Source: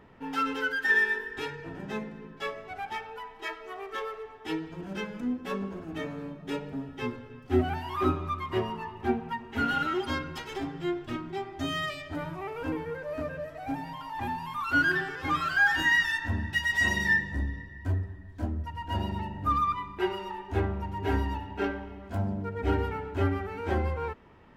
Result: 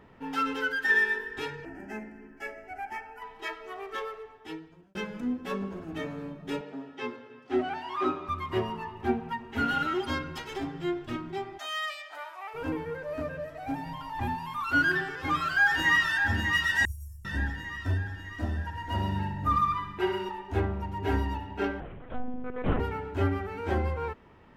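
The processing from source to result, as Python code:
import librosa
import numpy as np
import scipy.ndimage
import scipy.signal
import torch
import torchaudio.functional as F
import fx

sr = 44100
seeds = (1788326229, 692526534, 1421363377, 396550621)

y = fx.fixed_phaser(x, sr, hz=740.0, stages=8, at=(1.65, 3.22))
y = fx.bandpass_edges(y, sr, low_hz=300.0, high_hz=6200.0, at=(6.61, 8.29))
y = fx.highpass(y, sr, hz=710.0, slope=24, at=(11.57, 12.53), fade=0.02)
y = fx.low_shelf(y, sr, hz=140.0, db=9.0, at=(13.86, 14.35))
y = fx.echo_throw(y, sr, start_s=15.11, length_s=1.19, ms=600, feedback_pct=55, wet_db=-5.5)
y = fx.cheby2_bandstop(y, sr, low_hz=210.0, high_hz=4000.0, order=4, stop_db=50, at=(16.85, 17.25))
y = fx.echo_feedback(y, sr, ms=62, feedback_pct=60, wet_db=-8, at=(17.99, 20.29))
y = fx.lpc_monotone(y, sr, seeds[0], pitch_hz=250.0, order=10, at=(21.8, 22.8))
y = fx.edit(y, sr, fx.fade_out_span(start_s=3.96, length_s=0.99), tone=tone)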